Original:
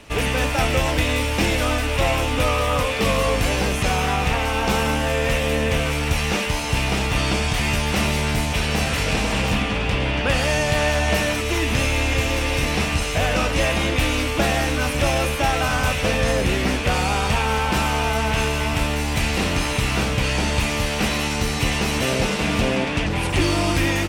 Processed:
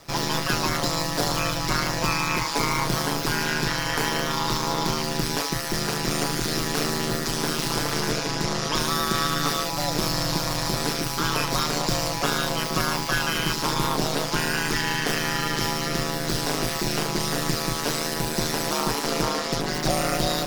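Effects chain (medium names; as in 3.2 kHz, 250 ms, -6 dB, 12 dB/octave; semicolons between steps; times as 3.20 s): granular stretch 1.7×, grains 31 ms; ring modulator 39 Hz; speed mistake 7.5 ips tape played at 15 ips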